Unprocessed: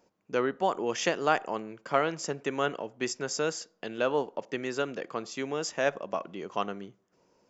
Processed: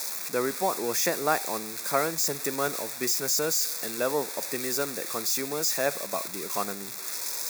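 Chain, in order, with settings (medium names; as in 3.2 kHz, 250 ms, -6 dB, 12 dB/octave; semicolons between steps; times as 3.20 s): zero-crossing glitches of -20 dBFS; Butterworth band-stop 3 kHz, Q 3.5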